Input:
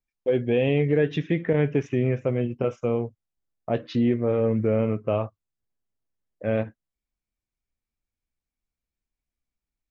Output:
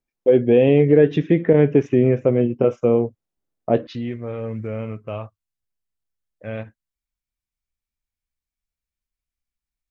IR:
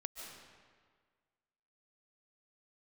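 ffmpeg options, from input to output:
-af "asetnsamples=nb_out_samples=441:pad=0,asendcmd='3.87 equalizer g -7.5',equalizer=frequency=360:width_type=o:width=2.8:gain=9"

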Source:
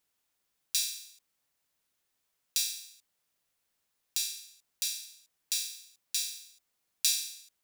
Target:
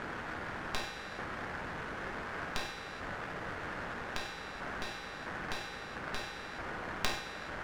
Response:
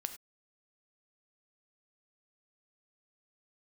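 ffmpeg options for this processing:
-filter_complex "[0:a]aeval=exprs='val(0)+0.5*0.0355*sgn(val(0))':channel_layout=same,equalizer=frequency=1600:width=1.7:gain=10,aeval=exprs='clip(val(0),-1,0.0376)':channel_layout=same,adynamicsmooth=sensitivity=1.5:basefreq=790[link_01];[1:a]atrim=start_sample=2205[link_02];[link_01][link_02]afir=irnorm=-1:irlink=0,volume=6.5dB"

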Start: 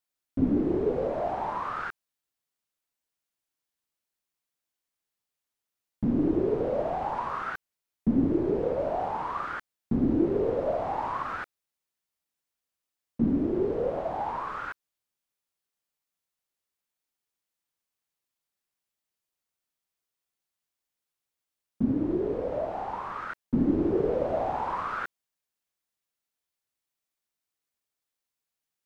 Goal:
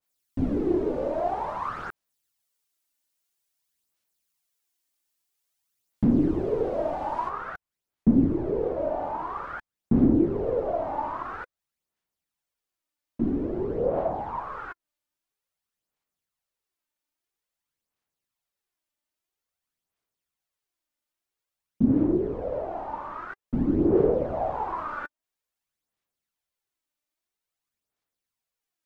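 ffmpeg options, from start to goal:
ffmpeg -i in.wav -af "asetnsamples=nb_out_samples=441:pad=0,asendcmd='7.29 highshelf g -3',highshelf=frequency=3200:gain=8.5,aphaser=in_gain=1:out_gain=1:delay=3.4:decay=0.47:speed=0.5:type=sinusoidal,adynamicequalizer=threshold=0.00631:dfrequency=1600:dqfactor=0.7:tfrequency=1600:tqfactor=0.7:attack=5:release=100:ratio=0.375:range=3.5:mode=cutabove:tftype=highshelf" out.wav

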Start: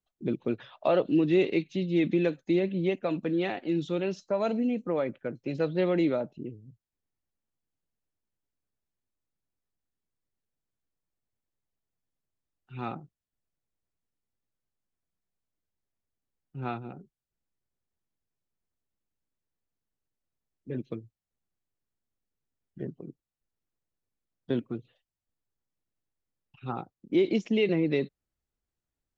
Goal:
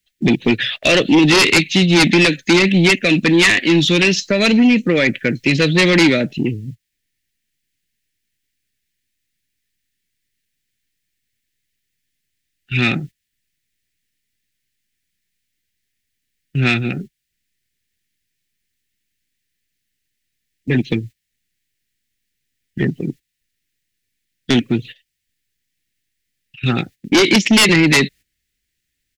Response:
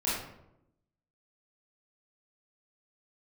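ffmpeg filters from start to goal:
-filter_complex "[0:a]agate=range=-13dB:threshold=-51dB:ratio=16:detection=peak,firequalizer=gain_entry='entry(240,0);entry(990,-20);entry(1800,13);entry(6300,9)':delay=0.05:min_phase=1,asplit=2[link_01][link_02];[link_02]acompressor=threshold=-35dB:ratio=6,volume=0dB[link_03];[link_01][link_03]amix=inputs=2:normalize=0,aeval=exprs='0.447*sin(PI/2*3.98*val(0)/0.447)':channel_layout=same"

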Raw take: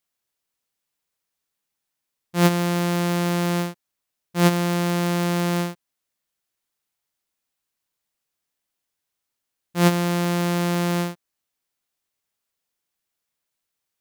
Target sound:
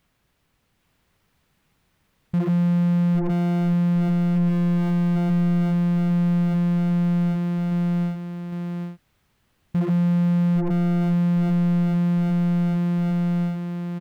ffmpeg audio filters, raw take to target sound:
ffmpeg -i in.wav -filter_complex "[0:a]asettb=1/sr,asplit=3[link_01][link_02][link_03];[link_01]atrim=end=3.304[link_04];[link_02]atrim=start=3.3:end=5.3,asetpts=PTS-STARTPTS,afade=type=in:duration=0.004:curve=qsin,afade=type=out:start_time=1.996:duration=0.004:curve=qsin,acompressor=threshold=-23dB:ratio=6[link_05];[link_03]atrim=start=5.296[link_06];[link_04][link_05]acrossfade=duration=0.004:curve1=hsin:curve2=qsin[link_07];[link_07][link_06]acrossfade=duration=0.004:curve1=qsin:curve2=hsin,aecho=1:1:806|1612|2418|3224:0.668|0.227|0.0773|0.0263,aeval=exprs='0.422*sin(PI/2*4.47*val(0)/0.422)':channel_layout=same,alimiter=limit=-18.5dB:level=0:latency=1,asoftclip=type=tanh:threshold=-28.5dB,bass=frequency=250:gain=14,treble=frequency=4000:gain=-13" out.wav

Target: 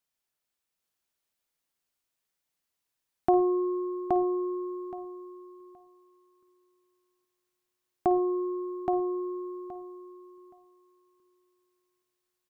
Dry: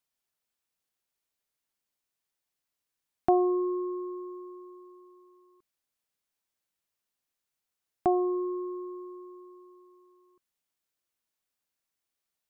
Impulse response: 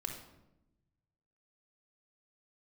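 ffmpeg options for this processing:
-filter_complex "[0:a]aecho=1:1:822|1644|2466:0.708|0.12|0.0205,asplit=2[link_01][link_02];[1:a]atrim=start_sample=2205,afade=type=out:start_time=0.13:duration=0.01,atrim=end_sample=6174,adelay=53[link_03];[link_02][link_03]afir=irnorm=-1:irlink=0,volume=-12.5dB[link_04];[link_01][link_04]amix=inputs=2:normalize=0"

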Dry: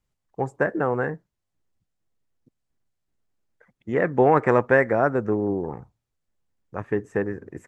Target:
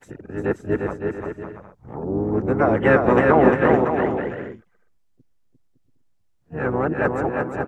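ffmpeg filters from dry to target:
ffmpeg -i in.wav -filter_complex "[0:a]areverse,asplit=4[link_01][link_02][link_03][link_04];[link_02]asetrate=22050,aresample=44100,atempo=2,volume=-9dB[link_05];[link_03]asetrate=35002,aresample=44100,atempo=1.25992,volume=-6dB[link_06];[link_04]asetrate=66075,aresample=44100,atempo=0.66742,volume=-15dB[link_07];[link_01][link_05][link_06][link_07]amix=inputs=4:normalize=0,aecho=1:1:350|560|686|761.6|807:0.631|0.398|0.251|0.158|0.1" out.wav

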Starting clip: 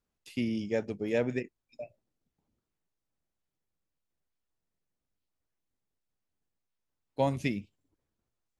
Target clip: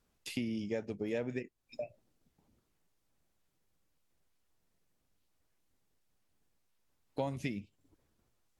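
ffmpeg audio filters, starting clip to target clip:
ffmpeg -i in.wav -af "acompressor=threshold=-47dB:ratio=3,volume=8.5dB" -ar 44100 -c:a libvorbis -b:a 96k out.ogg

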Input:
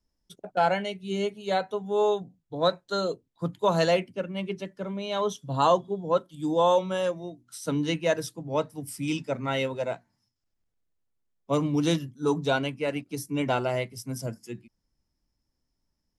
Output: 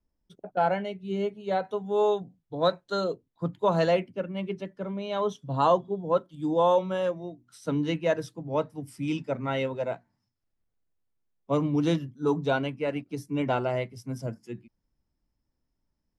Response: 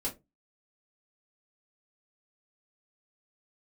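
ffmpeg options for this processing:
-af "asetnsamples=nb_out_samples=441:pad=0,asendcmd='1.65 lowpass f 4000;3.04 lowpass f 2100',lowpass=frequency=1300:poles=1"

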